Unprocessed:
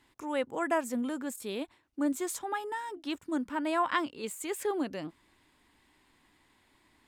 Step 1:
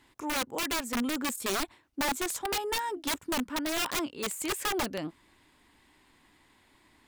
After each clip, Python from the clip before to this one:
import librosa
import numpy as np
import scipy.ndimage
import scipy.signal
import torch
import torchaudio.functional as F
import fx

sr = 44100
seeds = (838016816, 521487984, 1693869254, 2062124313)

y = fx.rider(x, sr, range_db=5, speed_s=0.5)
y = (np.mod(10.0 ** (27.0 / 20.0) * y + 1.0, 2.0) - 1.0) / 10.0 ** (27.0 / 20.0)
y = y * librosa.db_to_amplitude(2.5)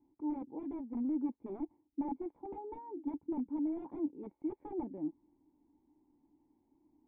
y = fx.formant_cascade(x, sr, vowel='u')
y = y * librosa.db_to_amplitude(1.5)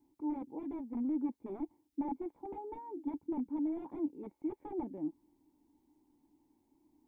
y = fx.high_shelf(x, sr, hz=2000.0, db=8.0)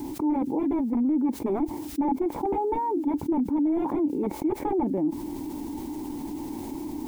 y = fx.env_flatten(x, sr, amount_pct=70)
y = y * librosa.db_to_amplitude(8.5)